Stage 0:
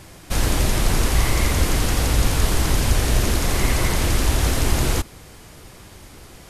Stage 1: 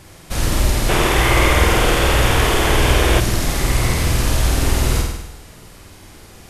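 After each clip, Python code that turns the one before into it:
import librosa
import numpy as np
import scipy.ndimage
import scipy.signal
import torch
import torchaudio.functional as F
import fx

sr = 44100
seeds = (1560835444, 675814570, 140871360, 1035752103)

y = fx.room_flutter(x, sr, wall_m=8.6, rt60_s=0.92)
y = fx.spec_box(y, sr, start_s=0.89, length_s=2.31, low_hz=320.0, high_hz=3700.0, gain_db=8)
y = F.gain(torch.from_numpy(y), -1.0).numpy()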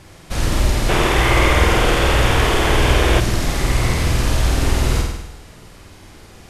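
y = fx.high_shelf(x, sr, hz=10000.0, db=-10.5)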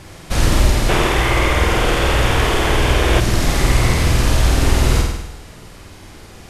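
y = fx.rider(x, sr, range_db=4, speed_s=0.5)
y = F.gain(torch.from_numpy(y), 1.0).numpy()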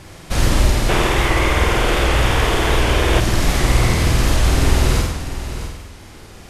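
y = x + 10.0 ** (-11.5 / 20.0) * np.pad(x, (int(653 * sr / 1000.0), 0))[:len(x)]
y = fx.record_warp(y, sr, rpm=78.0, depth_cents=100.0)
y = F.gain(torch.from_numpy(y), -1.0).numpy()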